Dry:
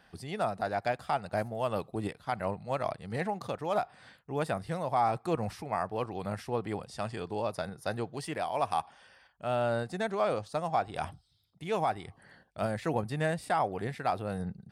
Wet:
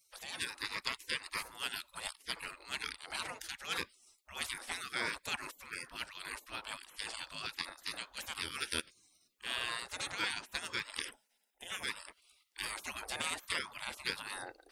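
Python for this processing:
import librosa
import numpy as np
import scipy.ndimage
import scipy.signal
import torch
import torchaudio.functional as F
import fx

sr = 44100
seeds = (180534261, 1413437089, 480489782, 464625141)

y = fx.fixed_phaser(x, sr, hz=1200.0, stages=6, at=(11.09, 11.82), fade=0.02)
y = fx.spec_gate(y, sr, threshold_db=-25, keep='weak')
y = y * 10.0 ** (11.0 / 20.0)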